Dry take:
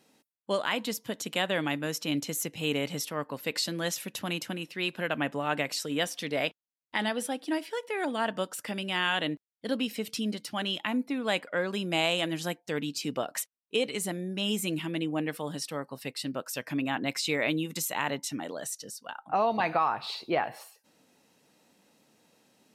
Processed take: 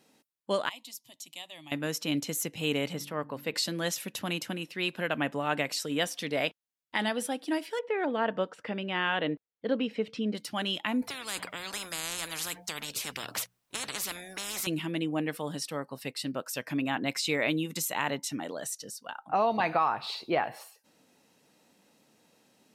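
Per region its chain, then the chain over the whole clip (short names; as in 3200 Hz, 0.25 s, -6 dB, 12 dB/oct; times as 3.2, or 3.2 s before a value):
0.69–1.72 passive tone stack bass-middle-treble 5-5-5 + fixed phaser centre 300 Hz, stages 8
2.93–3.54 bell 7900 Hz -8 dB 2.2 oct + de-hum 47.91 Hz, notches 7
7.79–10.35 LPF 2600 Hz + bell 470 Hz +6.5 dB 0.36 oct
11.02–14.67 high shelf 2100 Hz -6 dB + notches 60/120/180 Hz + spectral compressor 10:1
whole clip: dry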